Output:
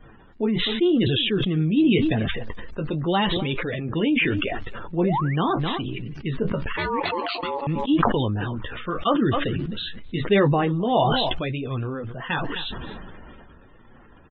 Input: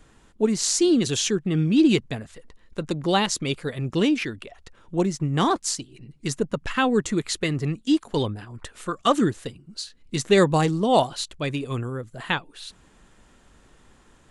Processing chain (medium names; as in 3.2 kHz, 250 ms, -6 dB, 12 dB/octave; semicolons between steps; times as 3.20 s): in parallel at +1 dB: compression, threshold -34 dBFS, peak gain reduction 19.5 dB; on the sum: flange 0.86 Hz, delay 8 ms, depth 6 ms, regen -35%; resampled via 8 kHz; crackle 170 per s -43 dBFS; loudest bins only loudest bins 64; 6.77–7.67 s: ring modulator 700 Hz; on a send: delay 261 ms -22.5 dB; 4.98–5.36 s: on the sum: painted sound rise 340–2500 Hz -38 dBFS; decay stretcher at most 20 dB/s